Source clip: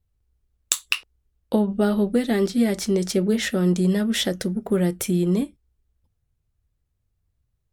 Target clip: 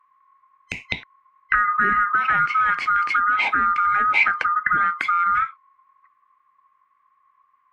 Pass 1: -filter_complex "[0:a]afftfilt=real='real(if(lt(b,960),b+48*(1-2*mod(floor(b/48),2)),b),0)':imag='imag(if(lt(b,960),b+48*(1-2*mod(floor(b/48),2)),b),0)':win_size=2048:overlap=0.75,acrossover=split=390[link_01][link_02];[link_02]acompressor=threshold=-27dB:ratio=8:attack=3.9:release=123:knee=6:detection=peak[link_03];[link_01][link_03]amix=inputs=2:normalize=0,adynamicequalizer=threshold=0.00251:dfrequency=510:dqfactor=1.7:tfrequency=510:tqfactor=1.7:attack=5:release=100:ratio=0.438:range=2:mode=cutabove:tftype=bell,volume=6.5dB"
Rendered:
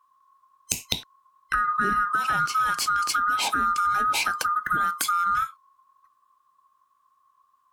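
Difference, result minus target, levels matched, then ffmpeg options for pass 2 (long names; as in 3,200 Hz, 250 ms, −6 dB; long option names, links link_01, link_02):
2,000 Hz band −3.0 dB
-filter_complex "[0:a]afftfilt=real='real(if(lt(b,960),b+48*(1-2*mod(floor(b/48),2)),b),0)':imag='imag(if(lt(b,960),b+48*(1-2*mod(floor(b/48),2)),b),0)':win_size=2048:overlap=0.75,acrossover=split=390[link_01][link_02];[link_02]acompressor=threshold=-27dB:ratio=8:attack=3.9:release=123:knee=6:detection=peak,lowpass=frequency=2100:width_type=q:width=7.8[link_03];[link_01][link_03]amix=inputs=2:normalize=0,adynamicequalizer=threshold=0.00251:dfrequency=510:dqfactor=1.7:tfrequency=510:tqfactor=1.7:attack=5:release=100:ratio=0.438:range=2:mode=cutabove:tftype=bell,volume=6.5dB"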